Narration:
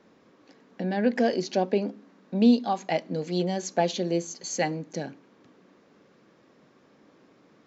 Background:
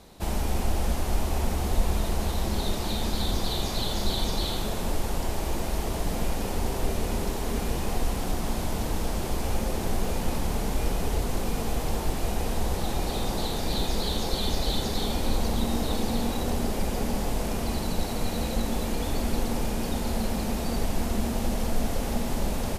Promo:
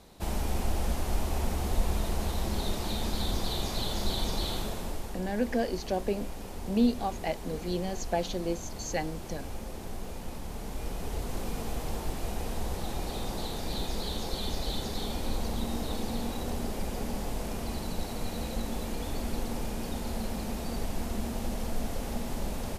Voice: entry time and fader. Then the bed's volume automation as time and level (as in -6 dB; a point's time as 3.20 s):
4.35 s, -5.5 dB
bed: 4.58 s -3.5 dB
5.21 s -11.5 dB
10.43 s -11.5 dB
11.40 s -6 dB